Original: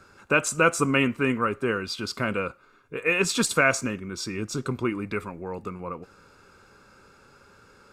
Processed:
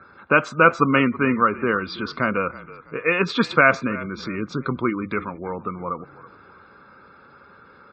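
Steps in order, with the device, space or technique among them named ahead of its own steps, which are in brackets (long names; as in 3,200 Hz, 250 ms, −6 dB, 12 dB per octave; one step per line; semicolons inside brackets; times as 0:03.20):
high-shelf EQ 2,900 Hz +2.5 dB
frequency-shifting delay pedal into a guitar cabinet (echo with shifted repeats 326 ms, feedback 34%, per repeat −40 Hz, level −18 dB; loudspeaker in its box 83–3,700 Hz, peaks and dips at 110 Hz −6 dB, 400 Hz −3 dB, 1,200 Hz +4 dB, 2,700 Hz −8 dB)
gate on every frequency bin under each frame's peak −30 dB strong
level +5 dB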